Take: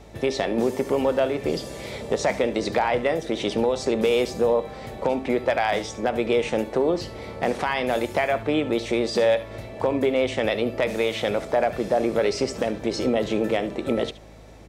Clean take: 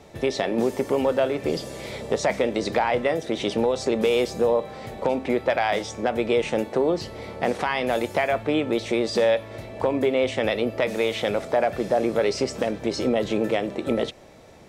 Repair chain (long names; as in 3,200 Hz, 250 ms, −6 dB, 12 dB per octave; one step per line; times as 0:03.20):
clipped peaks rebuilt −11.5 dBFS
hum removal 53.3 Hz, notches 6
echo removal 72 ms −16 dB